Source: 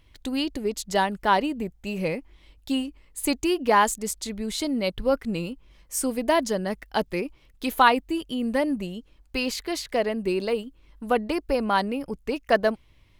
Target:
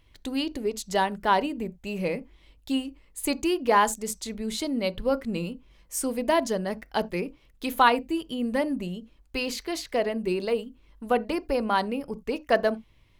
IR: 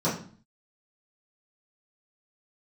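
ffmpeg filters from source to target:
-filter_complex "[0:a]asplit=2[s0][s1];[1:a]atrim=start_sample=2205,atrim=end_sample=3969[s2];[s1][s2]afir=irnorm=-1:irlink=0,volume=0.0422[s3];[s0][s3]amix=inputs=2:normalize=0,volume=0.794"

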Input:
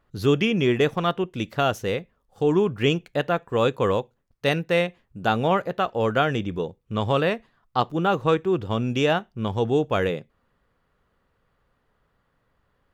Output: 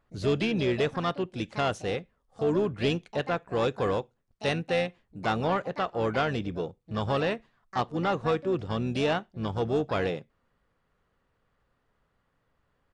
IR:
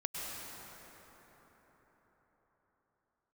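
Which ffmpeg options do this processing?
-filter_complex "[0:a]asplit=3[s0][s1][s2];[s1]asetrate=29433,aresample=44100,atempo=1.49831,volume=0.141[s3];[s2]asetrate=66075,aresample=44100,atempo=0.66742,volume=0.251[s4];[s0][s3][s4]amix=inputs=3:normalize=0,asoftclip=type=tanh:threshold=0.237,aresample=22050,aresample=44100,volume=0.596"

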